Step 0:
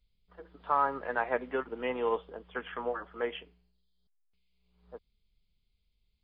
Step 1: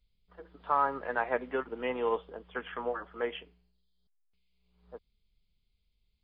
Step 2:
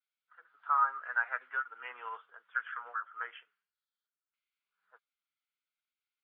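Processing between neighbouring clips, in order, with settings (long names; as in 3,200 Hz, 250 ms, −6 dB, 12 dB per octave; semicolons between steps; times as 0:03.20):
no processing that can be heard
spectral magnitudes quantised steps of 15 dB; four-pole ladder band-pass 1,500 Hz, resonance 75%; pitch vibrato 0.89 Hz 33 cents; level +6.5 dB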